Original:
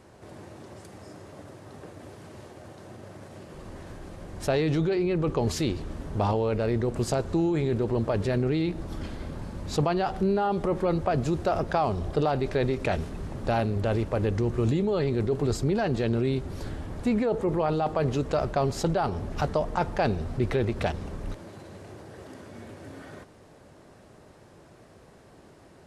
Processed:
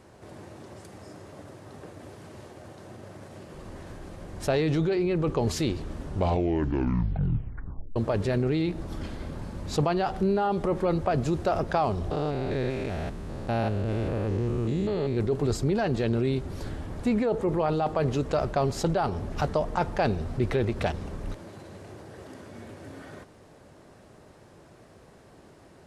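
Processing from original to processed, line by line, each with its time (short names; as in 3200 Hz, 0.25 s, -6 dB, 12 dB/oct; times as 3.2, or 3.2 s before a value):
6 tape stop 1.96 s
12.11–15.17 stepped spectrum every 0.2 s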